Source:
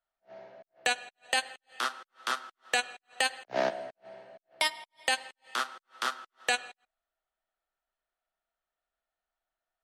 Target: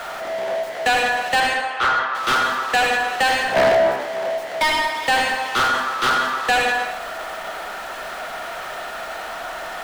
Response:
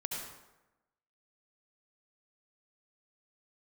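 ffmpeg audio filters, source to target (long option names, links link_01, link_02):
-filter_complex "[0:a]aeval=exprs='val(0)+0.5*0.0266*sgn(val(0))':channel_layout=same,agate=range=-11dB:threshold=-30dB:ratio=16:detection=peak,asettb=1/sr,asplit=3[link_01][link_02][link_03];[link_01]atrim=end=1.404[link_04];[link_02]atrim=start=1.4:end=2.15,asetpts=PTS-STARTPTS,afade=type=in:duration=0.004:curve=qsin,afade=type=out:start_time=0.746:duration=0.004:curve=qsin,highpass=530,lowpass=2400[link_05];[link_03]atrim=start=2.146[link_06];[link_04][link_05]acrossfade=duration=0.004:curve1=hsin:curve2=qsin[link_07];[link_07][link_06]acrossfade=duration=0.004:curve1=qsin:curve2=hsin,asplit=2[link_08][link_09];[1:a]atrim=start_sample=2205,lowshelf=frequency=230:gain=6.5[link_10];[link_09][link_10]afir=irnorm=-1:irlink=0,volume=-1dB[link_11];[link_08][link_11]amix=inputs=2:normalize=0,asplit=2[link_12][link_13];[link_13]highpass=frequency=720:poles=1,volume=26dB,asoftclip=type=tanh:threshold=-7dB[link_14];[link_12][link_14]amix=inputs=2:normalize=0,lowpass=frequency=1500:poles=1,volume=-6dB"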